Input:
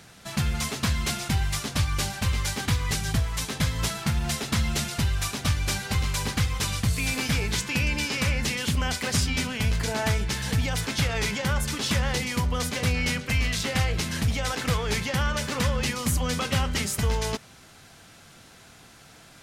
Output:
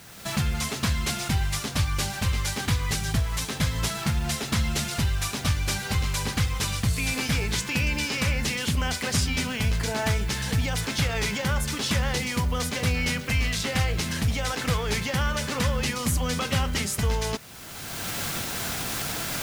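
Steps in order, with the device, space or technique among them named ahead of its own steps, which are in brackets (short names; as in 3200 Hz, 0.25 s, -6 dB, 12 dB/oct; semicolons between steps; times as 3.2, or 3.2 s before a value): cheap recorder with automatic gain (white noise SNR 26 dB; recorder AGC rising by 24 dB/s)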